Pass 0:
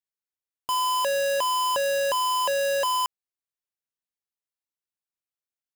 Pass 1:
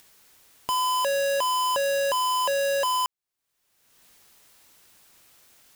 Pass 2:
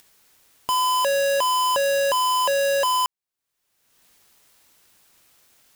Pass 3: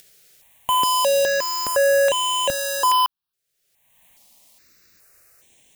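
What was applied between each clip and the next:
upward compressor, threshold -29 dBFS
waveshaping leveller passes 1
stepped phaser 2.4 Hz 260–4800 Hz; trim +5 dB

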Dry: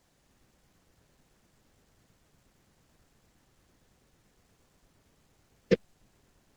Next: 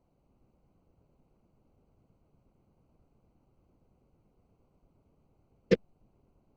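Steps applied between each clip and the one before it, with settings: local Wiener filter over 25 samples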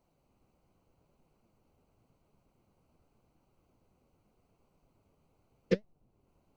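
flange 0.86 Hz, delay 4.5 ms, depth 8.2 ms, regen +75%; tape noise reduction on one side only encoder only

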